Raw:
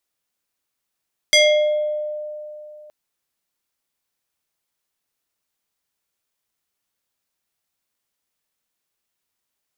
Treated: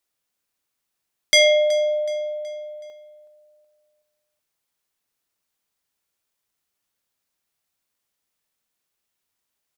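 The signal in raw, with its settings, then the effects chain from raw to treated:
two-operator FM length 1.57 s, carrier 603 Hz, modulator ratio 4.51, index 2.1, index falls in 0.91 s exponential, decay 2.96 s, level −9 dB
repeating echo 373 ms, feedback 42%, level −17 dB

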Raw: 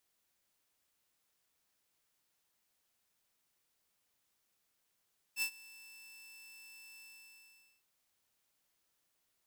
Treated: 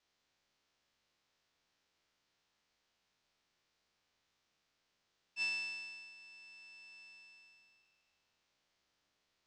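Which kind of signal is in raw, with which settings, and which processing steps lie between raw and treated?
note with an ADSR envelope saw 2,650 Hz, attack 60 ms, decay 81 ms, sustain −22.5 dB, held 1.65 s, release 823 ms −28 dBFS
peak hold with a decay on every bin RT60 1.97 s
low-pass filter 5,700 Hz 24 dB per octave

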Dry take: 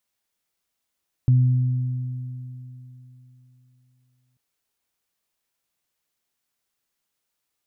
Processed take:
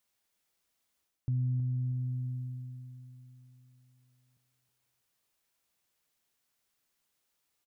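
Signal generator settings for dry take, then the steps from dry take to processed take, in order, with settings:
harmonic partials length 3.09 s, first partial 126 Hz, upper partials −17.5 dB, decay 3.33 s, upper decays 3.59 s, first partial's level −12 dB
reversed playback
downward compressor 6 to 1, threshold −30 dBFS
reversed playback
repeating echo 320 ms, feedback 25%, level −10 dB

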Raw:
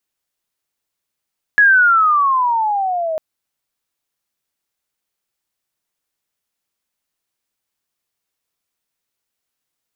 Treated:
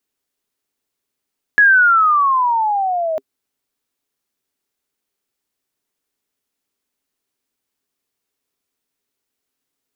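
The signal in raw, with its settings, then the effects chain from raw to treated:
glide logarithmic 1,700 Hz → 620 Hz −6.5 dBFS → −18 dBFS 1.60 s
hollow resonant body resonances 270/400 Hz, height 10 dB, ringing for 55 ms

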